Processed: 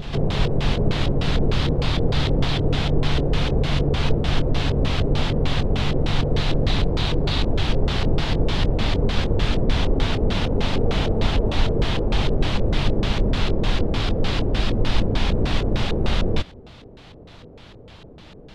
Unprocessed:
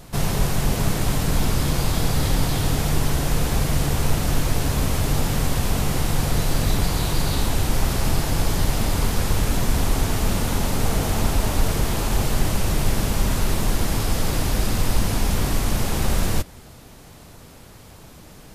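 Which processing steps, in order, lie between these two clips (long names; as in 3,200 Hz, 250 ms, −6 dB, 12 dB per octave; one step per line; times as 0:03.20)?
phase distortion by the signal itself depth 0.18 ms
auto-filter low-pass square 3.3 Hz 470–3,500 Hz
backwards echo 584 ms −11.5 dB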